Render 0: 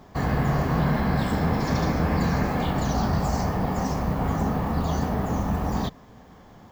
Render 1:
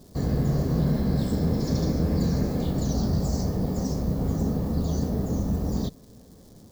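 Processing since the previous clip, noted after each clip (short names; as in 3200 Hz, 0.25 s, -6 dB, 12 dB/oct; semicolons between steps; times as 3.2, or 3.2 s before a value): crackle 600/s -44 dBFS; band shelf 1500 Hz -14.5 dB 2.4 oct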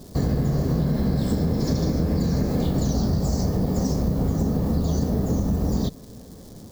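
compressor, threshold -26 dBFS, peak gain reduction 7.5 dB; gain +7.5 dB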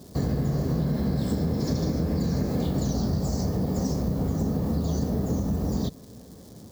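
HPF 57 Hz; gain -3 dB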